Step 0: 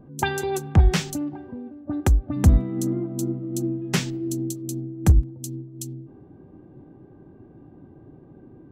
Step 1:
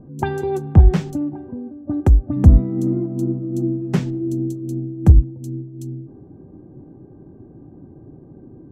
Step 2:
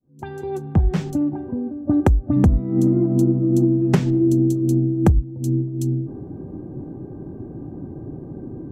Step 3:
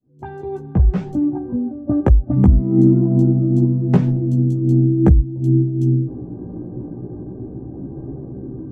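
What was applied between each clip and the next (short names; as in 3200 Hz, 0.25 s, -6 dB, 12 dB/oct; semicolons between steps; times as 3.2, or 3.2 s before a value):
tilt shelf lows +9.5 dB, about 1400 Hz; gain -3.5 dB
opening faded in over 2.40 s; compressor 10:1, threshold -21 dBFS, peak gain reduction 17 dB; gain +8.5 dB
LPF 1100 Hz 6 dB/oct; chorus voices 2, 0.37 Hz, delay 16 ms, depth 1 ms; gain +5 dB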